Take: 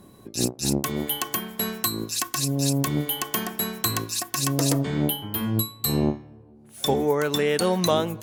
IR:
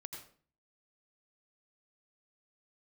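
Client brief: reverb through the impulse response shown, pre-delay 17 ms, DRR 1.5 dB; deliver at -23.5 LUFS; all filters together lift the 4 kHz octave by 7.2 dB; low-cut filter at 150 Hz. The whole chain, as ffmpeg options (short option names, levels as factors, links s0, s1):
-filter_complex "[0:a]highpass=150,equalizer=f=4000:t=o:g=8.5,asplit=2[s0][s1];[1:a]atrim=start_sample=2205,adelay=17[s2];[s1][s2]afir=irnorm=-1:irlink=0,volume=1.26[s3];[s0][s3]amix=inputs=2:normalize=0,volume=0.708"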